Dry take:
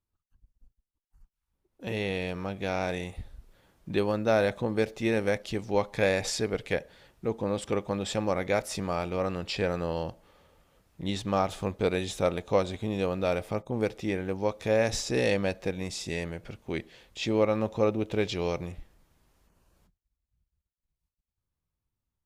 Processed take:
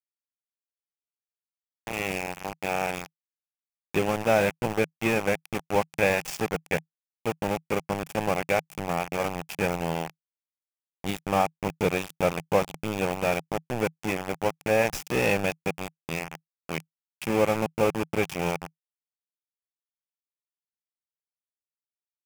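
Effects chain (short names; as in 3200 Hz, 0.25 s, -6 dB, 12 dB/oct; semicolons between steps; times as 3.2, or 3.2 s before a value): low-pass opened by the level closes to 1700 Hz, open at -25.5 dBFS; sample gate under -27 dBFS; thirty-one-band EQ 160 Hz +11 dB, 800 Hz +6 dB, 2500 Hz +7 dB, 4000 Hz -8 dB; gain +1 dB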